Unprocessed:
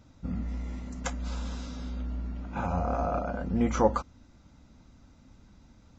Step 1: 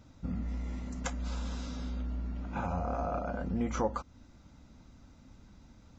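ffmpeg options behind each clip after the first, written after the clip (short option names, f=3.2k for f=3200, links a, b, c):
-af "acompressor=threshold=-33dB:ratio=2"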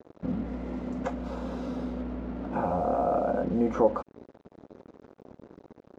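-filter_complex "[0:a]asplit=2[a][b];[b]alimiter=level_in=6dB:limit=-24dB:level=0:latency=1,volume=-6dB,volume=1dB[c];[a][c]amix=inputs=2:normalize=0,acrusher=bits=6:mix=0:aa=0.5,bandpass=f=450:t=q:w=1.2:csg=0,volume=8dB"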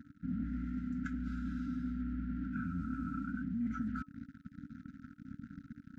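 -af "afftfilt=real='re*(1-between(b*sr/4096,300,1300))':imag='im*(1-between(b*sr/4096,300,1300))':win_size=4096:overlap=0.75,highshelf=f=1.9k:t=q:w=1.5:g=-7.5,areverse,acompressor=threshold=-42dB:ratio=4,areverse,volume=5.5dB"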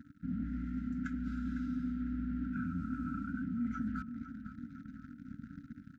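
-filter_complex "[0:a]asplit=2[a][b];[b]adelay=504,lowpass=f=3.4k:p=1,volume=-10.5dB,asplit=2[c][d];[d]adelay=504,lowpass=f=3.4k:p=1,volume=0.46,asplit=2[e][f];[f]adelay=504,lowpass=f=3.4k:p=1,volume=0.46,asplit=2[g][h];[h]adelay=504,lowpass=f=3.4k:p=1,volume=0.46,asplit=2[i][j];[j]adelay=504,lowpass=f=3.4k:p=1,volume=0.46[k];[a][c][e][g][i][k]amix=inputs=6:normalize=0"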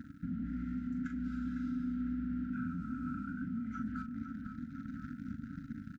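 -filter_complex "[0:a]alimiter=level_in=13.5dB:limit=-24dB:level=0:latency=1:release=397,volume=-13.5dB,asplit=2[a][b];[b]adelay=40,volume=-7dB[c];[a][c]amix=inputs=2:normalize=0,volume=6dB"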